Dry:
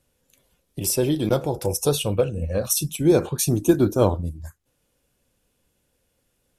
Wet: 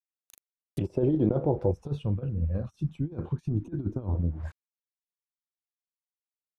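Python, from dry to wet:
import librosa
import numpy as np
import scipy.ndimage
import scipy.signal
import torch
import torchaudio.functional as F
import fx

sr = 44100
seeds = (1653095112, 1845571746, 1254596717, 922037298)

y = fx.high_shelf(x, sr, hz=2900.0, db=6.0)
y = fx.quant_dither(y, sr, seeds[0], bits=8, dither='none')
y = fx.over_compress(y, sr, threshold_db=-21.0, ratio=-0.5)
y = fx.env_lowpass_down(y, sr, base_hz=700.0, full_db=-23.0)
y = fx.peak_eq(y, sr, hz=540.0, db=-13.5, octaves=1.7, at=(1.71, 4.15))
y = F.gain(torch.from_numpy(y), -2.0).numpy()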